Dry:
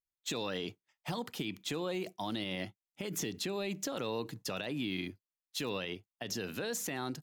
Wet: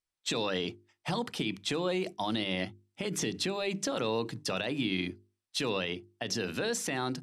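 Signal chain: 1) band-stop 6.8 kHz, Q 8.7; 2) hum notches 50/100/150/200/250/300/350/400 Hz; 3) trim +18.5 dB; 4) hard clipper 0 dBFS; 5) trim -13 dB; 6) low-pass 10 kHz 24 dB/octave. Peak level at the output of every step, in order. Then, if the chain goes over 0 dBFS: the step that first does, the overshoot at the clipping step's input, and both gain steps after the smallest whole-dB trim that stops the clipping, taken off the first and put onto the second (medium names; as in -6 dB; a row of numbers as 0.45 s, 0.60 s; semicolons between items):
-25.5 dBFS, -24.5 dBFS, -6.0 dBFS, -6.0 dBFS, -19.0 dBFS, -19.0 dBFS; nothing clips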